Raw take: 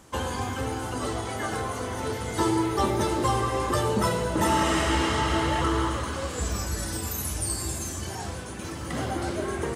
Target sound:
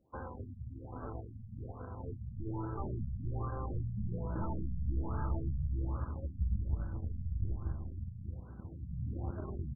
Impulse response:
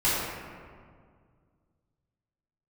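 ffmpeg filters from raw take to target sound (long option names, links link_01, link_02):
-filter_complex "[0:a]aeval=exprs='0.266*(cos(1*acos(clip(val(0)/0.266,-1,1)))-cos(1*PI/2))+0.0266*(cos(7*acos(clip(val(0)/0.266,-1,1)))-cos(7*PI/2))':channel_layout=same,acrossover=split=2100[link_01][link_02];[link_01]alimiter=limit=-23dB:level=0:latency=1:release=11[link_03];[link_02]acrusher=bits=5:dc=4:mix=0:aa=0.000001[link_04];[link_03][link_04]amix=inputs=2:normalize=0,asubboost=boost=4:cutoff=190,afftfilt=real='re*lt(b*sr/1024,210*pow(1700/210,0.5+0.5*sin(2*PI*1.2*pts/sr)))':imag='im*lt(b*sr/1024,210*pow(1700/210,0.5+0.5*sin(2*PI*1.2*pts/sr)))':win_size=1024:overlap=0.75,volume=-8dB"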